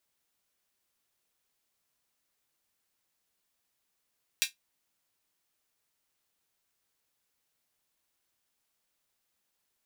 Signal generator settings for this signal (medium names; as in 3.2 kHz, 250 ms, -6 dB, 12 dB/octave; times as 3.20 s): closed hi-hat, high-pass 2.6 kHz, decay 0.14 s